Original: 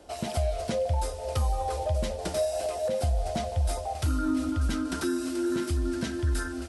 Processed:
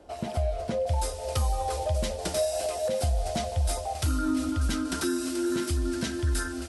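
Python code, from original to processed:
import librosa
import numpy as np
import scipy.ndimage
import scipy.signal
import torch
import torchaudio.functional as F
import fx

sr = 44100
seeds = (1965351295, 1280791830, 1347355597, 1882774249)

y = fx.high_shelf(x, sr, hz=2600.0, db=fx.steps((0.0, -8.5), (0.86, 5.5)))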